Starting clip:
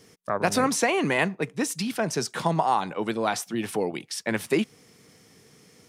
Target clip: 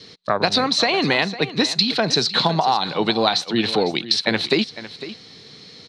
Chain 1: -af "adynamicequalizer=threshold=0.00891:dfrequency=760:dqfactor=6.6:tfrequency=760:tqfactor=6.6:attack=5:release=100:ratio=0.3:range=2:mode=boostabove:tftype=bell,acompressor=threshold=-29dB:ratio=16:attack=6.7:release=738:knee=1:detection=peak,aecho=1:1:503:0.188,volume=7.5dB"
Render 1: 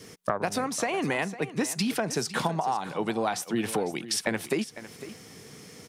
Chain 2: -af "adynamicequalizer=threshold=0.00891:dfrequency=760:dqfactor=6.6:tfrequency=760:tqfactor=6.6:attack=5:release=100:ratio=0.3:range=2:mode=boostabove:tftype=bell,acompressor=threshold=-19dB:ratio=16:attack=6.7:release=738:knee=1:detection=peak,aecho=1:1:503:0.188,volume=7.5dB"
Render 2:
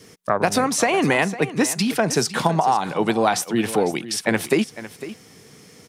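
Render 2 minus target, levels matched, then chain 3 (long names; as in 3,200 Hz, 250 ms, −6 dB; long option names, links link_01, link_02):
4,000 Hz band −9.0 dB
-af "adynamicequalizer=threshold=0.00891:dfrequency=760:dqfactor=6.6:tfrequency=760:tqfactor=6.6:attack=5:release=100:ratio=0.3:range=2:mode=boostabove:tftype=bell,lowpass=frequency=4100:width_type=q:width=14,acompressor=threshold=-19dB:ratio=16:attack=6.7:release=738:knee=1:detection=peak,aecho=1:1:503:0.188,volume=7.5dB"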